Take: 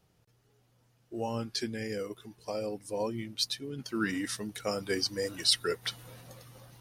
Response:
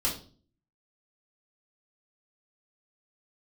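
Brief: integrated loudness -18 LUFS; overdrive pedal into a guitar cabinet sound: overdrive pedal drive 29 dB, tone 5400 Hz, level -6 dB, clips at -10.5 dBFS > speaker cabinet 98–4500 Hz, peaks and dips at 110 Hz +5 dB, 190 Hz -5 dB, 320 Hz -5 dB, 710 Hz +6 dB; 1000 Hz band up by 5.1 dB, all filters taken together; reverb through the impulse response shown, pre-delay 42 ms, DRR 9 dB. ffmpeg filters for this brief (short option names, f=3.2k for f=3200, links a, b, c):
-filter_complex "[0:a]equalizer=f=1k:t=o:g=4,asplit=2[a][b];[1:a]atrim=start_sample=2205,adelay=42[c];[b][c]afir=irnorm=-1:irlink=0,volume=-16dB[d];[a][d]amix=inputs=2:normalize=0,asplit=2[e][f];[f]highpass=f=720:p=1,volume=29dB,asoftclip=type=tanh:threshold=-10.5dB[g];[e][g]amix=inputs=2:normalize=0,lowpass=f=5.4k:p=1,volume=-6dB,highpass=98,equalizer=f=110:t=q:w=4:g=5,equalizer=f=190:t=q:w=4:g=-5,equalizer=f=320:t=q:w=4:g=-5,equalizer=f=710:t=q:w=4:g=6,lowpass=f=4.5k:w=0.5412,lowpass=f=4.5k:w=1.3066,volume=3.5dB"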